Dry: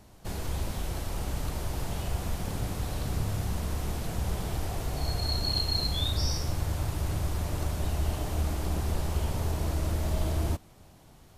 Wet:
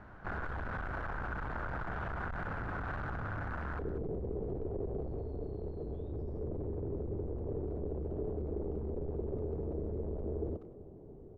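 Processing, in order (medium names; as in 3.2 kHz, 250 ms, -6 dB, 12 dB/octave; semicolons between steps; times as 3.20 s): dynamic bell 930 Hz, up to +3 dB, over -51 dBFS, Q 0.72; peak limiter -26.5 dBFS, peak gain reduction 10 dB; hard clipper -38.5 dBFS, distortion -8 dB; resonant low-pass 1.5 kHz, resonance Q 5.2, from 3.79 s 420 Hz; speakerphone echo 190 ms, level -14 dB; trim +1 dB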